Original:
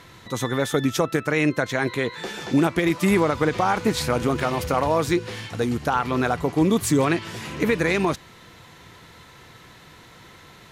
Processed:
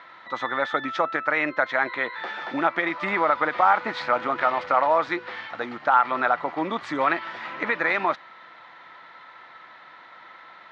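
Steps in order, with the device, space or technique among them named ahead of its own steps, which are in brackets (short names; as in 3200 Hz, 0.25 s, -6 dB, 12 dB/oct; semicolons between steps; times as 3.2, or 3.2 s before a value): phone earpiece (speaker cabinet 420–3700 Hz, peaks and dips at 430 Hz -9 dB, 610 Hz +5 dB, 870 Hz +6 dB, 1300 Hz +9 dB, 1900 Hz +6 dB, 2800 Hz -4 dB); gain -2 dB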